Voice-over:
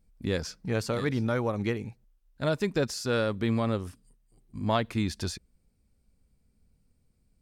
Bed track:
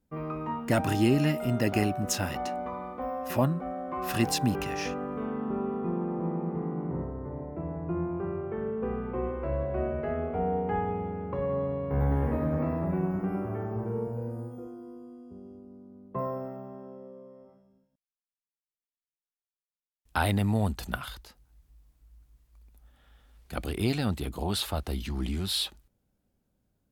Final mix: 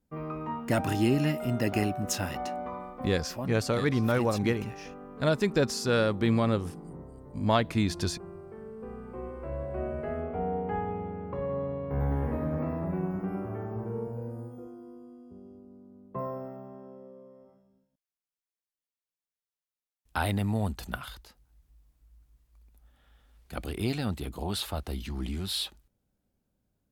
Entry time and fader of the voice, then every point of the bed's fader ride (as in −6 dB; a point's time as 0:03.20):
2.80 s, +2.0 dB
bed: 0:02.76 −1.5 dB
0:03.36 −11 dB
0:08.68 −11 dB
0:09.94 −2.5 dB